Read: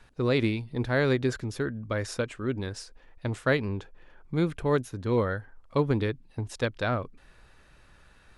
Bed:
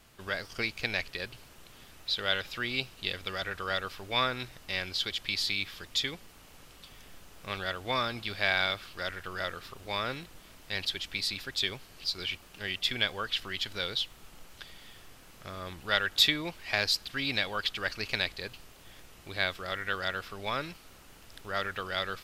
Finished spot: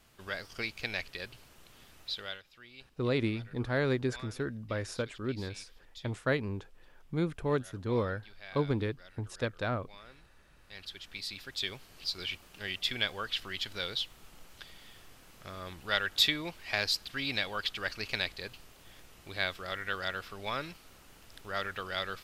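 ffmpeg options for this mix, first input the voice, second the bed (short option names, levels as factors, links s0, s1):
-filter_complex "[0:a]adelay=2800,volume=0.562[s0];[1:a]volume=5.01,afade=t=out:st=2.03:d=0.39:silence=0.149624,afade=t=in:st=10.53:d=1.46:silence=0.125893[s1];[s0][s1]amix=inputs=2:normalize=0"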